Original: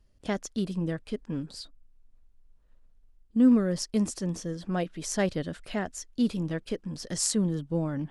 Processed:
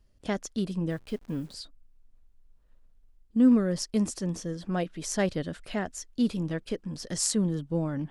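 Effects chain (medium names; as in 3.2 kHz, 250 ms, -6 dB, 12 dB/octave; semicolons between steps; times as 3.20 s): 0.90–1.54 s: send-on-delta sampling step -54 dBFS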